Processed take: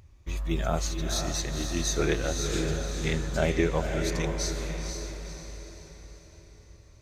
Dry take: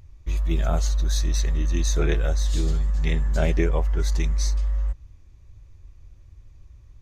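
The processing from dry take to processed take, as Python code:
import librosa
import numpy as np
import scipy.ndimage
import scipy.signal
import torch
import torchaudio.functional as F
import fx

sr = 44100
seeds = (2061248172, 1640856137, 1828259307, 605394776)

p1 = fx.highpass(x, sr, hz=120.0, slope=6)
y = p1 + fx.echo_diffused(p1, sr, ms=500, feedback_pct=47, wet_db=-5, dry=0)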